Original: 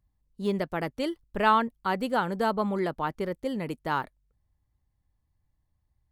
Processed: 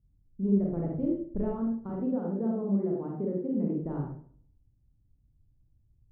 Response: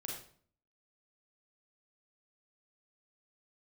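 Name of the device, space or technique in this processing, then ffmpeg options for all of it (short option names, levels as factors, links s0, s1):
television next door: -filter_complex "[0:a]asettb=1/sr,asplit=3[s0][s1][s2];[s0]atrim=end=1.894[s3];[s1]atrim=start=1.89:end=3.77,asetpts=PTS-STARTPTS,afade=t=in:d=0.004:c=qsin,afade=t=out:st=1.876:d=0.004:c=qsin,highpass=f=160:w=0.5412,highpass=f=160:w=1.3066[s4];[s2]atrim=start=3.766[s5];[s3][s4]acrossfade=d=0.004:c1=hsin:c2=qsin[s6];[s6][s5]acrossfade=d=0.004:c1=qsin:c2=hsin,acompressor=threshold=0.0398:ratio=4,lowpass=300[s7];[1:a]atrim=start_sample=2205[s8];[s7][s8]afir=irnorm=-1:irlink=0,volume=2.66"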